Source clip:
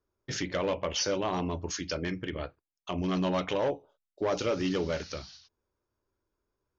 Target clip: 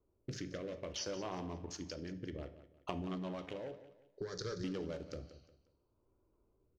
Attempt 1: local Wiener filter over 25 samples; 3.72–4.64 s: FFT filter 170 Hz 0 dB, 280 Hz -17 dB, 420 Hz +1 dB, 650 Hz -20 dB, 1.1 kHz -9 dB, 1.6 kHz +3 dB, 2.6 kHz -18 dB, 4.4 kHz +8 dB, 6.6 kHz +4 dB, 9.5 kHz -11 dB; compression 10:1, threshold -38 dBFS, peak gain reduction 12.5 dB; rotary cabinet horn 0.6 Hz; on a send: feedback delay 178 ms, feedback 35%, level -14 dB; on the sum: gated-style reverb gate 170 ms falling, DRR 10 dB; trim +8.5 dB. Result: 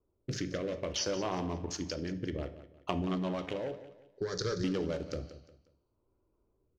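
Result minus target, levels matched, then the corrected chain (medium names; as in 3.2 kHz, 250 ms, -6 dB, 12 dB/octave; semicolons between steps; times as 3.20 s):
compression: peak gain reduction -7.5 dB
local Wiener filter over 25 samples; 3.72–4.64 s: FFT filter 170 Hz 0 dB, 280 Hz -17 dB, 420 Hz +1 dB, 650 Hz -20 dB, 1.1 kHz -9 dB, 1.6 kHz +3 dB, 2.6 kHz -18 dB, 4.4 kHz +8 dB, 6.6 kHz +4 dB, 9.5 kHz -11 dB; compression 10:1, threshold -46.5 dBFS, peak gain reduction 20.5 dB; rotary cabinet horn 0.6 Hz; on a send: feedback delay 178 ms, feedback 35%, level -14 dB; on the sum: gated-style reverb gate 170 ms falling, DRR 10 dB; trim +8.5 dB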